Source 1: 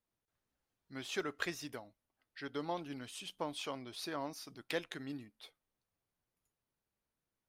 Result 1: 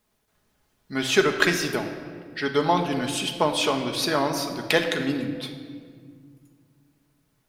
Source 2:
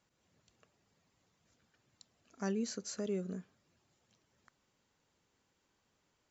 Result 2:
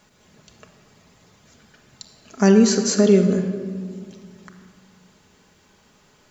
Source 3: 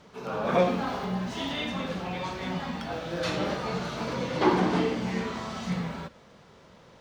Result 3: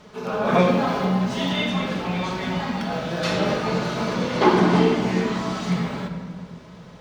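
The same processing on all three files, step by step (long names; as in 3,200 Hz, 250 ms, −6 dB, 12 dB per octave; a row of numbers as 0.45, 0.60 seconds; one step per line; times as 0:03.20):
rectangular room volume 3,200 cubic metres, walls mixed, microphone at 1.4 metres
normalise the peak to −3 dBFS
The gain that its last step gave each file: +17.0, +19.5, +5.0 decibels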